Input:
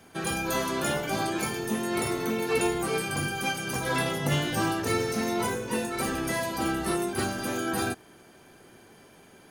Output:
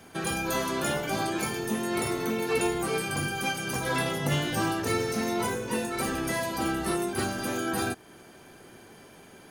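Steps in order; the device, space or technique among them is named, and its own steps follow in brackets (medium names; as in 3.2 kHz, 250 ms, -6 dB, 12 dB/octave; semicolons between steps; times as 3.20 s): parallel compression (in parallel at -2.5 dB: compression, threshold -38 dBFS, peak gain reduction 15.5 dB); on the sum: trim -2 dB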